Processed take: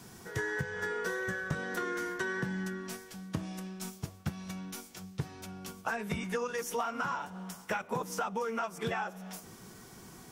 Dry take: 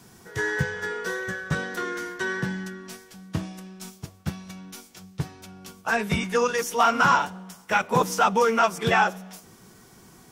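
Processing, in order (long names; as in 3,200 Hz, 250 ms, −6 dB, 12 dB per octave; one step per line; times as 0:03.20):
downward compressor 16 to 1, threshold −30 dBFS, peak gain reduction 16 dB
dynamic equaliser 4,000 Hz, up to −4 dB, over −50 dBFS, Q 0.78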